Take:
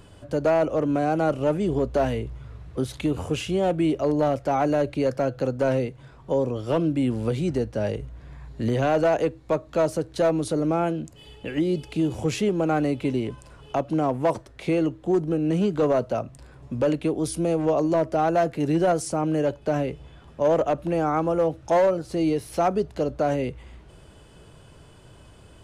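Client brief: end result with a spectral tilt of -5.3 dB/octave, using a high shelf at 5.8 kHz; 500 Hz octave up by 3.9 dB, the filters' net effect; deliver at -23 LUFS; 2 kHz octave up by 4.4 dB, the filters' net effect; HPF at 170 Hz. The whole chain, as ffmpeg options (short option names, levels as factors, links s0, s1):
-af "highpass=170,equalizer=f=500:t=o:g=4.5,equalizer=f=2000:t=o:g=5,highshelf=f=5800:g=7,volume=0.891"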